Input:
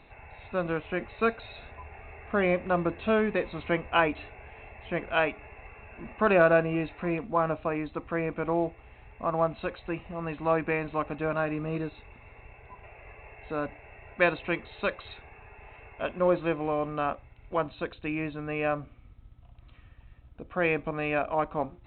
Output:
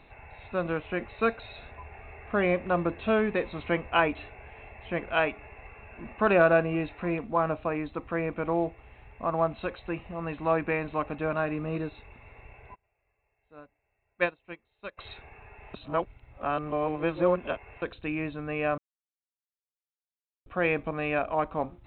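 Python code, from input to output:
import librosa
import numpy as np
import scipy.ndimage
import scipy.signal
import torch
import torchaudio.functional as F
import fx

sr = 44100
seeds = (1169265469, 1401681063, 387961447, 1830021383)

y = fx.upward_expand(x, sr, threshold_db=-37.0, expansion=2.5, at=(12.74, 14.97), fade=0.02)
y = fx.edit(y, sr, fx.reverse_span(start_s=15.74, length_s=2.08),
    fx.silence(start_s=18.78, length_s=1.68), tone=tone)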